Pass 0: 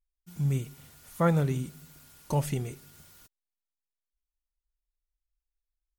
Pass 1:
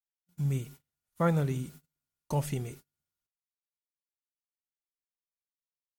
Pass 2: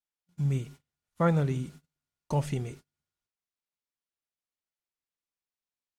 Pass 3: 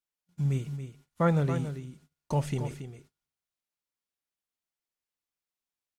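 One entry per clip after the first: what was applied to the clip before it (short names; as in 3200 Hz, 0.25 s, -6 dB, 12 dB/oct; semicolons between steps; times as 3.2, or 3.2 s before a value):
gate -45 dBFS, range -34 dB; gain -2.5 dB
air absorption 51 m; gain +2 dB
echo 0.278 s -10 dB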